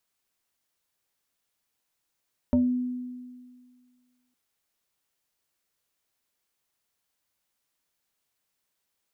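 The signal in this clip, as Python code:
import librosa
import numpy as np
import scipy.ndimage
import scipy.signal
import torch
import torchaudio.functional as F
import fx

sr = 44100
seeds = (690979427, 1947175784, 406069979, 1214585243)

y = fx.fm2(sr, length_s=1.81, level_db=-17.0, carrier_hz=249.0, ratio=1.35, index=0.89, index_s=0.28, decay_s=1.87, shape='exponential')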